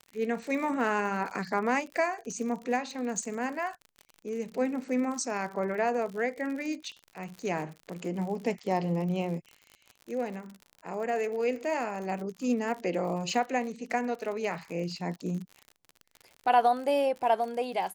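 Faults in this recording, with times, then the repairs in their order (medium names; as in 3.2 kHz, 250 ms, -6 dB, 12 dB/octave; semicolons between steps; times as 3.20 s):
crackle 59 per s -37 dBFS
1.30–1.31 s: dropout 7.5 ms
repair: de-click; interpolate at 1.30 s, 7.5 ms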